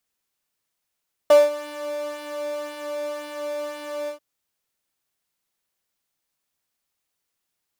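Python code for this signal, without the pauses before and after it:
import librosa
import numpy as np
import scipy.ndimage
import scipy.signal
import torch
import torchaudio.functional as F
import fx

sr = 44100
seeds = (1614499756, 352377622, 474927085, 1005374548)

y = fx.sub_patch_pwm(sr, seeds[0], note=74, wave2='square', interval_st=-12, detune_cents=30, level2_db=-2.0, sub_db=-15.0, noise_db=-17.0, kind='highpass', cutoff_hz=430.0, q=5.2, env_oct=0.5, env_decay_s=0.27, env_sustain_pct=40, attack_ms=4.8, decay_s=0.19, sustain_db=-15.0, release_s=0.11, note_s=2.78, lfo_hz=1.9, width_pct=25, width_swing_pct=17)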